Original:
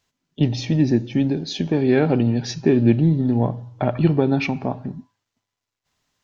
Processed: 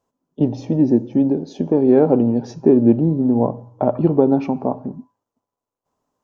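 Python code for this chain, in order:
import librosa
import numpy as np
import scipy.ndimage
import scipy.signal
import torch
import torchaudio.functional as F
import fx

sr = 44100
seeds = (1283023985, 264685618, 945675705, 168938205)

y = fx.graphic_eq(x, sr, hz=(250, 500, 1000, 2000, 4000), db=(8, 11, 10, -10, -9))
y = F.gain(torch.from_numpy(y), -6.5).numpy()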